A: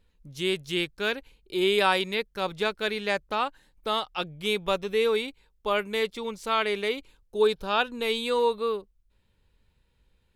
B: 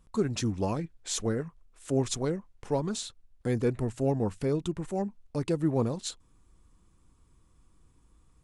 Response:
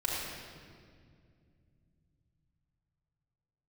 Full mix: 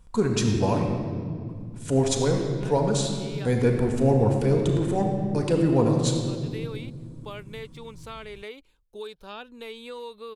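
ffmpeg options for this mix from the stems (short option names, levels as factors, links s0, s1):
-filter_complex "[0:a]acrossover=split=440|2100[s0][s1][s2];[s0]acompressor=threshold=0.0158:ratio=4[s3];[s1]acompressor=threshold=0.0224:ratio=4[s4];[s2]acompressor=threshold=0.0126:ratio=4[s5];[s3][s4][s5]amix=inputs=3:normalize=0,adelay=1600,volume=0.422[s6];[1:a]volume=1.26,asplit=3[s7][s8][s9];[s7]atrim=end=0.89,asetpts=PTS-STARTPTS,afade=t=out:st=0.886:d=0.004:c=hsin[s10];[s8]atrim=start=0.89:end=1.49,asetpts=PTS-STARTPTS,volume=0[s11];[s9]atrim=start=1.49,asetpts=PTS-STARTPTS,afade=t=in:d=0.004:c=hsin[s12];[s10][s11][s12]concat=n=3:v=0:a=1,asplit=3[s13][s14][s15];[s14]volume=0.596[s16];[s15]apad=whole_len=527110[s17];[s6][s17]sidechaincompress=threshold=0.00891:ratio=8:attack=16:release=469[s18];[2:a]atrim=start_sample=2205[s19];[s16][s19]afir=irnorm=-1:irlink=0[s20];[s18][s13][s20]amix=inputs=3:normalize=0"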